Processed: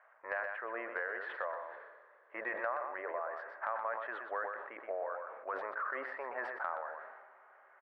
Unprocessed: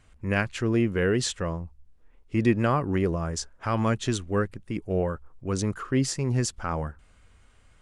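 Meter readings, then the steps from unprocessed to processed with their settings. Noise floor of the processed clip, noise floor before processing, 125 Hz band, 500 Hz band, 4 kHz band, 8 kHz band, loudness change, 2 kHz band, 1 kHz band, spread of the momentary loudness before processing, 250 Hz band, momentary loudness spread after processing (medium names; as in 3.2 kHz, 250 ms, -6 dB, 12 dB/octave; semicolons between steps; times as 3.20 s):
-64 dBFS, -58 dBFS, under -40 dB, -11.5 dB, under -25 dB, under -40 dB, -12.5 dB, -4.5 dB, -5.0 dB, 8 LU, -29.5 dB, 11 LU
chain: elliptic band-pass 590–1800 Hz, stop band 60 dB; compression 5:1, threshold -42 dBFS, peak gain reduction 18 dB; on a send: delay 124 ms -9 dB; on the sum: algorithmic reverb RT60 4.7 s, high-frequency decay 0.9×, pre-delay 50 ms, DRR 17.5 dB; decay stretcher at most 41 dB/s; trim +5.5 dB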